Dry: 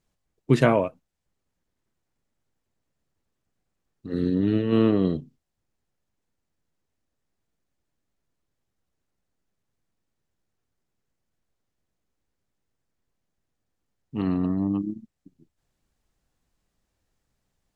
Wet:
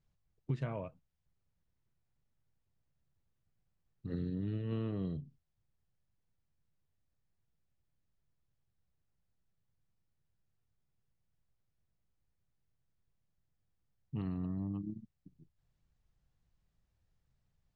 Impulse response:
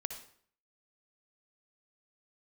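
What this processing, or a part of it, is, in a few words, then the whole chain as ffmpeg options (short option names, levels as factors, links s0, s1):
jukebox: -af "lowpass=5900,lowshelf=f=190:t=q:w=1.5:g=8,acompressor=threshold=0.0447:ratio=5,volume=0.398"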